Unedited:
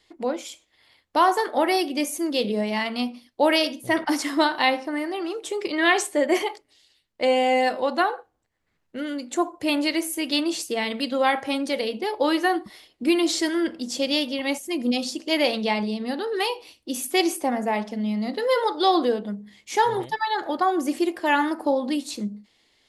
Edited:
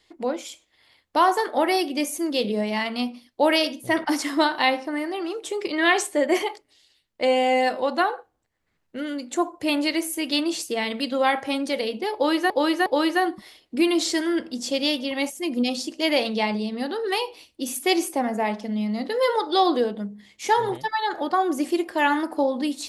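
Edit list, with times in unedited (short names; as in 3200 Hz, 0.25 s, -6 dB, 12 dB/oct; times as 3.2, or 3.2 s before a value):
12.14–12.5 loop, 3 plays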